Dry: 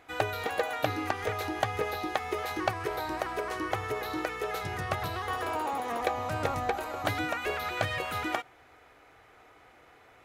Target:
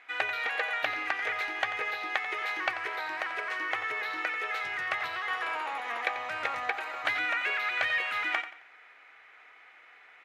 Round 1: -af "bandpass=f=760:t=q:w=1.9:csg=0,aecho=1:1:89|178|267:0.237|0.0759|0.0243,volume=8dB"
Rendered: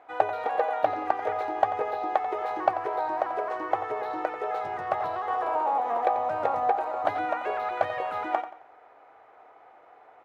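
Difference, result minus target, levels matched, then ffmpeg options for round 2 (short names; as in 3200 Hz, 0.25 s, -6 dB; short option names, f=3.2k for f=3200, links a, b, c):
2000 Hz band -12.0 dB
-af "bandpass=f=2.1k:t=q:w=1.9:csg=0,aecho=1:1:89|178|267:0.237|0.0759|0.0243,volume=8dB"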